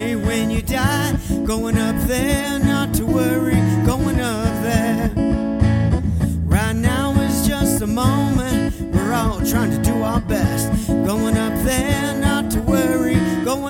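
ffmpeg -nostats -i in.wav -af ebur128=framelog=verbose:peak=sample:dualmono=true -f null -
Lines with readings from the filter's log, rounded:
Integrated loudness:
  I:         -15.5 LUFS
  Threshold: -25.5 LUFS
Loudness range:
  LRA:         0.8 LU
  Threshold: -35.5 LUFS
  LRA low:   -15.9 LUFS
  LRA high:  -15.1 LUFS
Sample peak:
  Peak:       -2.7 dBFS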